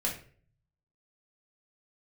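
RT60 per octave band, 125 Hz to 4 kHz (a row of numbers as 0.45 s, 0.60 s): 1.1 s, 0.55 s, 0.55 s, 0.40 s, 0.45 s, 0.35 s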